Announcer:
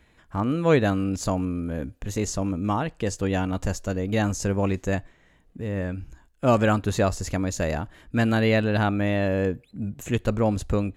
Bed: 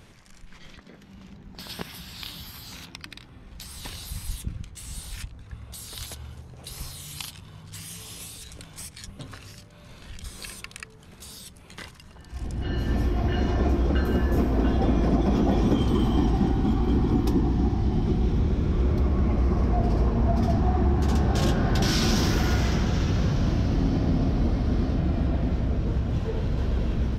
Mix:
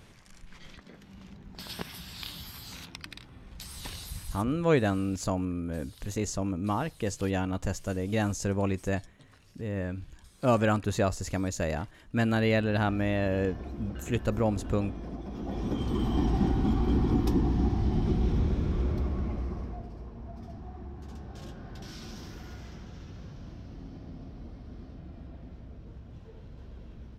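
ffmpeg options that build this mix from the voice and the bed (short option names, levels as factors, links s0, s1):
-filter_complex "[0:a]adelay=4000,volume=0.596[s0];[1:a]volume=3.76,afade=t=out:st=3.94:d=0.81:silence=0.188365,afade=t=in:st=15.34:d=1.09:silence=0.199526,afade=t=out:st=18.39:d=1.51:silence=0.133352[s1];[s0][s1]amix=inputs=2:normalize=0"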